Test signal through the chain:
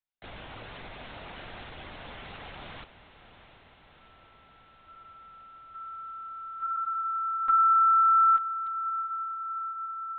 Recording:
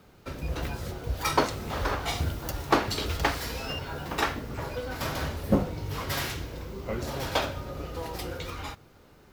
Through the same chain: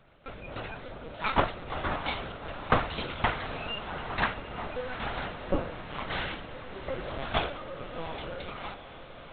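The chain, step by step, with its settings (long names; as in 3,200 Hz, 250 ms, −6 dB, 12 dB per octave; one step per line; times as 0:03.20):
high-pass filter 320 Hz 12 dB per octave
linear-prediction vocoder at 8 kHz pitch kept
on a send: feedback delay with all-pass diffusion 731 ms, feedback 73%, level −13.5 dB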